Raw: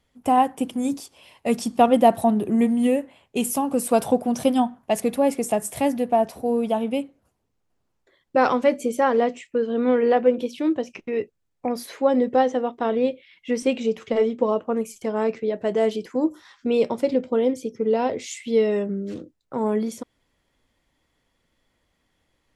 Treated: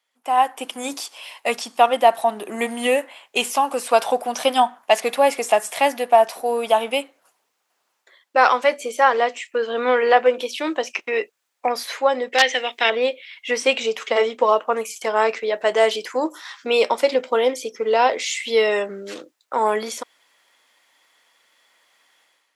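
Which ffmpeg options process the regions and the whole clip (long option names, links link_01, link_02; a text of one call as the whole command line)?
ffmpeg -i in.wav -filter_complex "[0:a]asettb=1/sr,asplit=3[link_01][link_02][link_03];[link_01]atrim=end=12.324[link_04];[link_02]atrim=start=12.32:end=12.9,asetpts=PTS-STARTPTS,afade=type=in:duration=0.004:curve=qsin,afade=type=out:start_time=0.576:duration=0.004:curve=qsin,highshelf=frequency=1600:width_type=q:width=3:gain=10.5,aeval=exprs='(mod(2.37*val(0)+1,2)-1)/2.37':channel_layout=same[link_05];[link_03]atrim=start=12.896[link_06];[link_04][link_05]acrossfade=duration=0.004:curve1=hsin:curve2=qsin[link_07];[link_07][link_06]acrossfade=duration=0.004:curve1=qsin:curve2=hsin,acrossover=split=5400[link_08][link_09];[link_09]acompressor=threshold=-47dB:ratio=4:attack=1:release=60[link_10];[link_08][link_10]amix=inputs=2:normalize=0,highpass=880,dynaudnorm=framelen=110:gausssize=7:maxgain=15dB,volume=-1dB" out.wav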